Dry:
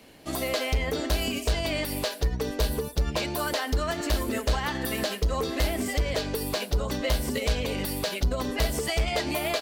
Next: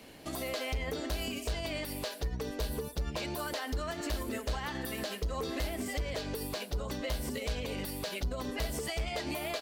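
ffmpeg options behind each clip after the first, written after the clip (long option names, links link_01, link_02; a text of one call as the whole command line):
ffmpeg -i in.wav -af "alimiter=level_in=3dB:limit=-24dB:level=0:latency=1:release=376,volume=-3dB" out.wav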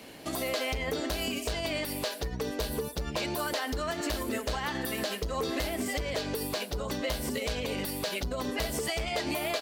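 ffmpeg -i in.wav -af "lowshelf=frequency=79:gain=-10,volume=5dB" out.wav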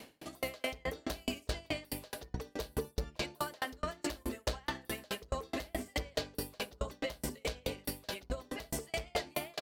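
ffmpeg -i in.wav -filter_complex "[0:a]asplit=2[link_01][link_02];[link_02]adelay=62,lowpass=frequency=820:poles=1,volume=-7dB,asplit=2[link_03][link_04];[link_04]adelay=62,lowpass=frequency=820:poles=1,volume=0.41,asplit=2[link_05][link_06];[link_06]adelay=62,lowpass=frequency=820:poles=1,volume=0.41,asplit=2[link_07][link_08];[link_08]adelay=62,lowpass=frequency=820:poles=1,volume=0.41,asplit=2[link_09][link_10];[link_10]adelay=62,lowpass=frequency=820:poles=1,volume=0.41[link_11];[link_03][link_05][link_07][link_09][link_11]amix=inputs=5:normalize=0[link_12];[link_01][link_12]amix=inputs=2:normalize=0,aeval=exprs='val(0)*pow(10,-37*if(lt(mod(4.7*n/s,1),2*abs(4.7)/1000),1-mod(4.7*n/s,1)/(2*abs(4.7)/1000),(mod(4.7*n/s,1)-2*abs(4.7)/1000)/(1-2*abs(4.7)/1000))/20)':channel_layout=same,volume=1.5dB" out.wav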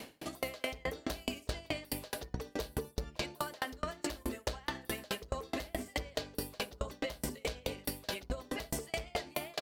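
ffmpeg -i in.wav -af "acompressor=threshold=-37dB:ratio=6,volume=4.5dB" out.wav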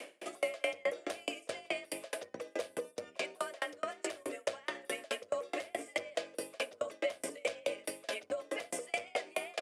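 ffmpeg -i in.wav -af "highpass=330,equalizer=frequency=530:width_type=q:width=4:gain=8,equalizer=frequency=850:width_type=q:width=4:gain=-7,equalizer=frequency=2300:width_type=q:width=4:gain=5,equalizer=frequency=4200:width_type=q:width=4:gain=-9,equalizer=frequency=5900:width_type=q:width=4:gain=-3,equalizer=frequency=9300:width_type=q:width=4:gain=4,lowpass=frequency=10000:width=0.5412,lowpass=frequency=10000:width=1.3066,afreqshift=37" out.wav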